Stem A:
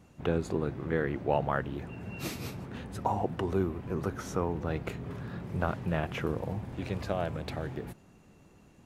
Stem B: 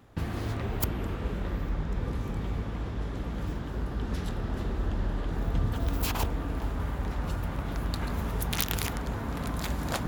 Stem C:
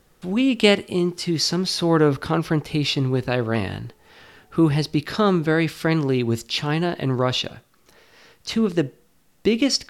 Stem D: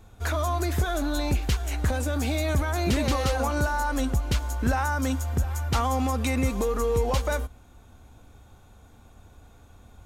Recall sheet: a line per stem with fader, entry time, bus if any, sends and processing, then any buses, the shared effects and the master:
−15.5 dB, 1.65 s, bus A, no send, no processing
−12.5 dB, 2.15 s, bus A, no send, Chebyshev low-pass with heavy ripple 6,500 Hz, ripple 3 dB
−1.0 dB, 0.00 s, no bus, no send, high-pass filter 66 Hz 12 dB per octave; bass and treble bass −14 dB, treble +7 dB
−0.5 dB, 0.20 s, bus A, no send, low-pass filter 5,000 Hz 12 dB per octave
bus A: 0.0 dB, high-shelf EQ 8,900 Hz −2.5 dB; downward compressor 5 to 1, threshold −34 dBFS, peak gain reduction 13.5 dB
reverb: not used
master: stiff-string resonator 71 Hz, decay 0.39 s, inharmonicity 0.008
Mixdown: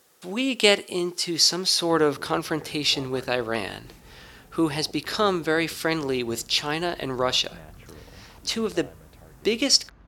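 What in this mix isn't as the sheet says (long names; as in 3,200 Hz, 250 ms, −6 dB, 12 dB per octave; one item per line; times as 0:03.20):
stem B −12.5 dB → −19.0 dB
stem D: muted
master: missing stiff-string resonator 71 Hz, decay 0.39 s, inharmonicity 0.008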